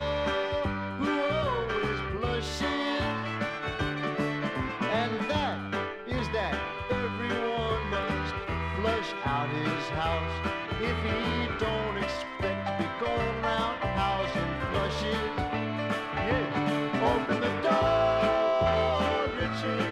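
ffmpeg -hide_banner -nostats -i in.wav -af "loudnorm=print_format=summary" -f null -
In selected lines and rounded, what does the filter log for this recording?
Input Integrated:    -28.8 LUFS
Input True Peak:     -12.6 dBTP
Input LRA:             4.2 LU
Input Threshold:     -38.8 LUFS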